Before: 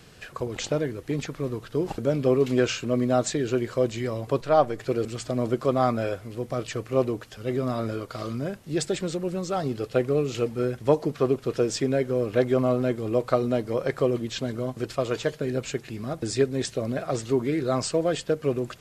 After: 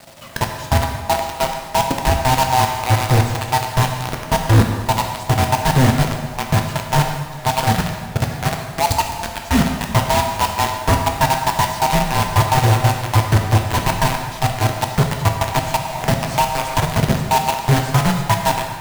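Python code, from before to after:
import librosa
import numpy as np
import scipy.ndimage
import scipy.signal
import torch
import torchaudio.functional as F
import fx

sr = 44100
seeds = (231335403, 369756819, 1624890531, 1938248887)

p1 = fx.band_swap(x, sr, width_hz=500)
p2 = fx.peak_eq(p1, sr, hz=150.0, db=14.5, octaves=2.1)
p3 = fx.transient(p2, sr, attack_db=8, sustain_db=-4)
p4 = fx.level_steps(p3, sr, step_db=10)
p5 = p3 + (p4 * 10.0 ** (2.0 / 20.0))
p6 = fx.dispersion(p5, sr, late='highs', ms=100.0, hz=410.0, at=(8.09, 9.28))
p7 = fx.quant_companded(p6, sr, bits=2)
p8 = fx.rev_plate(p7, sr, seeds[0], rt60_s=1.6, hf_ratio=0.8, predelay_ms=0, drr_db=2.5)
p9 = fx.band_squash(p8, sr, depth_pct=70, at=(15.54, 16.87))
y = p9 * 10.0 ** (-11.0 / 20.0)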